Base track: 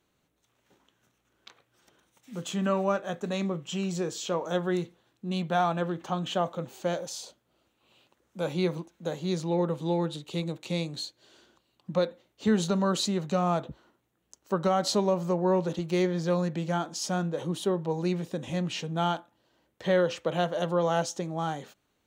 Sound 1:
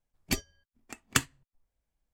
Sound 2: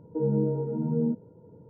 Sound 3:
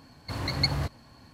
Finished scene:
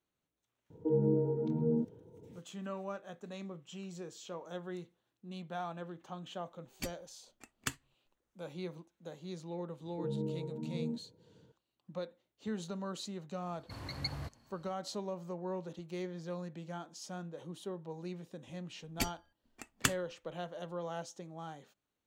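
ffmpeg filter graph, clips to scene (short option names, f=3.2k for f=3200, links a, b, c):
-filter_complex "[2:a]asplit=2[a][b];[1:a]asplit=2[c][d];[0:a]volume=-14.5dB[e];[a]aecho=1:1:2.6:0.34,atrim=end=1.69,asetpts=PTS-STARTPTS,volume=-3.5dB,afade=t=in:d=0.004:c=hsin,afade=t=out:st=1.686:d=0.004:c=hsin,adelay=700[f];[c]atrim=end=2.13,asetpts=PTS-STARTPTS,volume=-11.5dB,afade=t=in:d=0.004:c=hsin,afade=t=out:st=2.126:d=0.004:c=hsin,adelay=6510[g];[b]atrim=end=1.69,asetpts=PTS-STARTPTS,volume=-11.5dB,afade=t=in:d=0.004:c=hsin,afade=t=out:st=1.686:d=0.004:c=hsin,adelay=9830[h];[3:a]atrim=end=1.33,asetpts=PTS-STARTPTS,volume=-12.5dB,afade=t=in:d=0.004:c=hsin,afade=t=out:st=1.326:d=0.004:c=hsin,adelay=13410[i];[d]atrim=end=2.13,asetpts=PTS-STARTPTS,volume=-5dB,afade=t=in:d=0.004:c=hsin,afade=t=out:st=2.126:d=0.004:c=hsin,adelay=18690[j];[e][f][g][h][i][j]amix=inputs=6:normalize=0"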